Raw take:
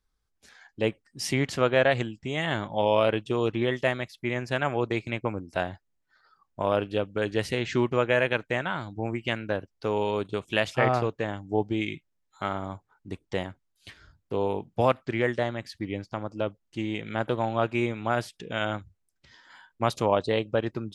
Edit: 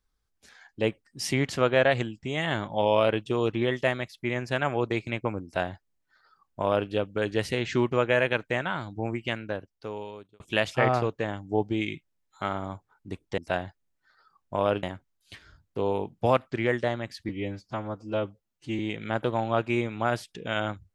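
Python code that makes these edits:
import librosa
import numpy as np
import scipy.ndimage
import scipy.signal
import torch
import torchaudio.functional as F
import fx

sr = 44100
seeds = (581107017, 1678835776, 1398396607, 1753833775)

y = fx.edit(x, sr, fx.duplicate(start_s=5.44, length_s=1.45, to_s=13.38),
    fx.fade_out_span(start_s=9.08, length_s=1.32),
    fx.stretch_span(start_s=15.84, length_s=1.0, factor=1.5), tone=tone)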